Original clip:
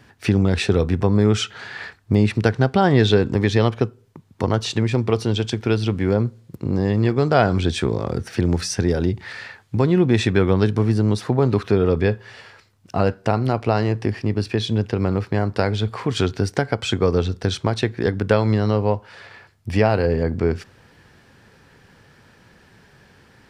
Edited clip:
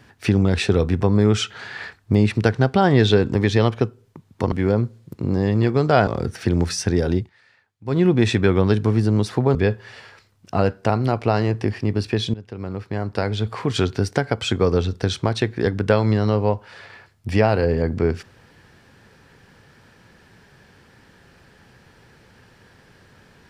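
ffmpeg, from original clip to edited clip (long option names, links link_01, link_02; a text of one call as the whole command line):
ffmpeg -i in.wav -filter_complex "[0:a]asplit=7[link_01][link_02][link_03][link_04][link_05][link_06][link_07];[link_01]atrim=end=4.522[link_08];[link_02]atrim=start=5.938:end=7.492[link_09];[link_03]atrim=start=7.988:end=9.22,asetpts=PTS-STARTPTS,afade=type=out:start_time=1.112:duration=0.12:silence=0.0841395[link_10];[link_04]atrim=start=9.22:end=9.77,asetpts=PTS-STARTPTS,volume=-21.5dB[link_11];[link_05]atrim=start=9.77:end=11.472,asetpts=PTS-STARTPTS,afade=type=in:duration=0.12:silence=0.0841395[link_12];[link_06]atrim=start=11.958:end=14.75,asetpts=PTS-STARTPTS,afade=type=out:start_time=2.788:duration=0.004:curve=hsin:silence=0.11885[link_13];[link_07]atrim=start=14.75,asetpts=PTS-STARTPTS,afade=type=in:duration=1.26:silence=0.11885[link_14];[link_08][link_09]acrossfade=duration=0.004:curve1=hsin:curve2=hsin[link_15];[link_10][link_11][link_12]concat=n=3:v=0:a=1[link_16];[link_15][link_16]acrossfade=duration=0.004:curve1=hsin:curve2=hsin[link_17];[link_13][link_14]concat=n=2:v=0:a=1[link_18];[link_17][link_18]acrossfade=duration=0.004:curve1=hsin:curve2=hsin" out.wav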